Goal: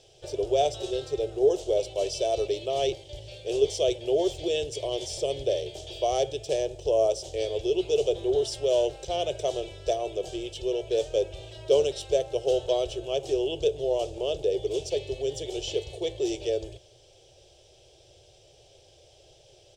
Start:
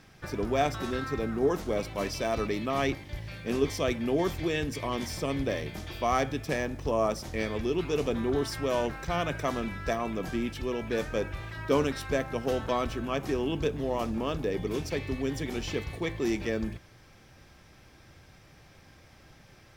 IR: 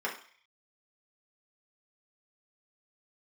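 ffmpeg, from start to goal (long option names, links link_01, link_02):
-af "firequalizer=gain_entry='entry(130,0);entry(220,-28);entry(370,10);entry(610,12);entry(1100,-14);entry(2000,-12);entry(3000,12);entry(4300,7);entry(8000,12);entry(12000,-8)':delay=0.05:min_phase=1,volume=-5dB"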